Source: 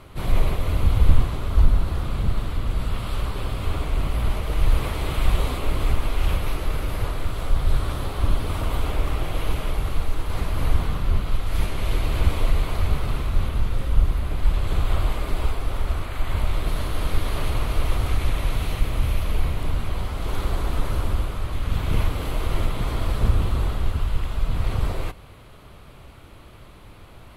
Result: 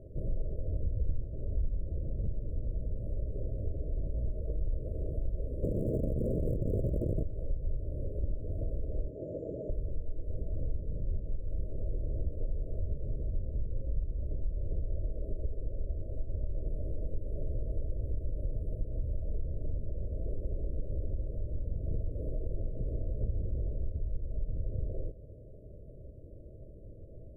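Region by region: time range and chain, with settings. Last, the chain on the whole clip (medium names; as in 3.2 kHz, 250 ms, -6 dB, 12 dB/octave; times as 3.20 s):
5.63–7.23 s: bass shelf 380 Hz +9.5 dB + integer overflow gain 11.5 dB
9.10–9.70 s: one-bit delta coder 32 kbps, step -25 dBFS + high-pass 190 Hz
whole clip: FFT band-reject 660–6900 Hz; FFT filter 110 Hz 0 dB, 230 Hz -4 dB, 510 Hz +2 dB, 5.3 kHz -30 dB; compression 3:1, threshold -29 dBFS; trim -2.5 dB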